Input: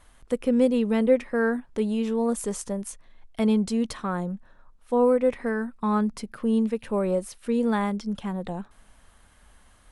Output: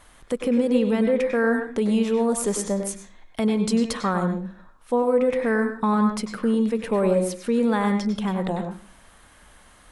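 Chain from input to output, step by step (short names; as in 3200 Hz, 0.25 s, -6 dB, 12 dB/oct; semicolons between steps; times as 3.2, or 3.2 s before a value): low shelf 130 Hz -6.5 dB; limiter -20.5 dBFS, peak gain reduction 10 dB; on a send: reverb RT60 0.40 s, pre-delay 94 ms, DRR 5 dB; on the sum: gain +6.5 dB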